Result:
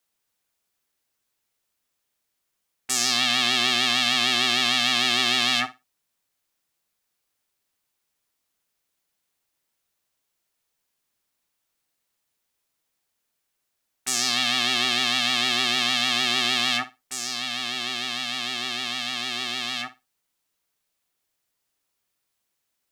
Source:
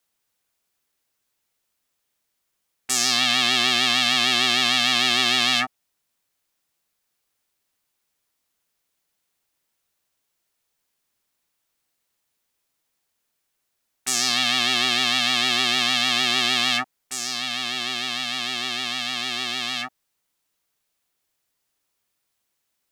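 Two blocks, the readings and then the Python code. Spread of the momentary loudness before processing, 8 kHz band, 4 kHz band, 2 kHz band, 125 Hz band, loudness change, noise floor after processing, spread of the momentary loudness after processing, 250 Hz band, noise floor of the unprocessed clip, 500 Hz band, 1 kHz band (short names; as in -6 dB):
8 LU, -2.0 dB, -2.0 dB, -2.0 dB, -2.0 dB, -2.0 dB, -78 dBFS, 8 LU, -1.5 dB, -77 dBFS, -1.5 dB, -2.0 dB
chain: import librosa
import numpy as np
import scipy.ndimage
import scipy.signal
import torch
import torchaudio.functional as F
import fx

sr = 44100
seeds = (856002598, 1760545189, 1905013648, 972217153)

y = fx.room_flutter(x, sr, wall_m=10.0, rt60_s=0.22)
y = y * 10.0 ** (-2.0 / 20.0)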